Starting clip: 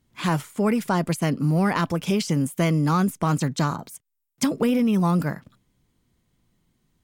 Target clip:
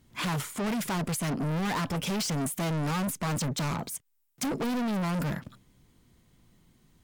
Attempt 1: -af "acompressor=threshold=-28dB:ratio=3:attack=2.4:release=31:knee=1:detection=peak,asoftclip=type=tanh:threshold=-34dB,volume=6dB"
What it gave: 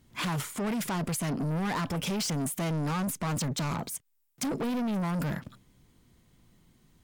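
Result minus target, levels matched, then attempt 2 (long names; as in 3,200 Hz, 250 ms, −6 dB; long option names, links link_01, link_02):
downward compressor: peak gain reduction +9.5 dB
-af "asoftclip=type=tanh:threshold=-34dB,volume=6dB"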